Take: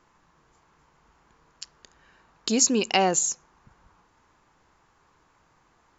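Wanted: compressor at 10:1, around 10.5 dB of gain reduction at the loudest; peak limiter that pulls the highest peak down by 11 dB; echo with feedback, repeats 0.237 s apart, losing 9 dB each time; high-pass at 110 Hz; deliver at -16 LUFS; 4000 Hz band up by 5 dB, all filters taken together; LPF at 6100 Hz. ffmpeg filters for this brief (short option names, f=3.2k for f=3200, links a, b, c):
-af "highpass=110,lowpass=6.1k,equalizer=f=4k:t=o:g=8.5,acompressor=threshold=-26dB:ratio=10,alimiter=limit=-19.5dB:level=0:latency=1,aecho=1:1:237|474|711|948:0.355|0.124|0.0435|0.0152,volume=17dB"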